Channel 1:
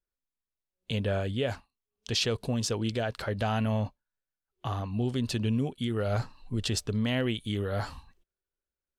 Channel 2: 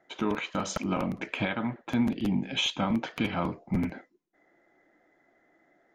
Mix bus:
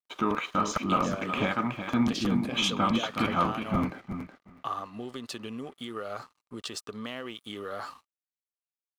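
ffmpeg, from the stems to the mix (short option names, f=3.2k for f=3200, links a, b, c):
-filter_complex "[0:a]highpass=300,acompressor=threshold=-33dB:ratio=6,volume=-0.5dB[a];[1:a]volume=0dB,asplit=2[b][c];[c]volume=-8dB,aecho=0:1:370|740|1110:1|0.17|0.0289[d];[a][b][d]amix=inputs=3:normalize=0,aeval=exprs='sgn(val(0))*max(abs(val(0))-0.00133,0)':c=same,equalizer=f=1.2k:t=o:w=0.23:g=14"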